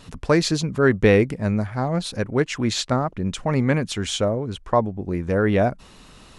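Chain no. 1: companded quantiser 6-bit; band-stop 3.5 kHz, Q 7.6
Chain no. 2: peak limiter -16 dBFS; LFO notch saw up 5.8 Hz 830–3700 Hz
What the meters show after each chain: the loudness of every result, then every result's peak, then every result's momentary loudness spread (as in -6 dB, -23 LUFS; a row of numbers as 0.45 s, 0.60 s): -22.0 LUFS, -27.0 LUFS; -4.5 dBFS, -15.5 dBFS; 8 LU, 4 LU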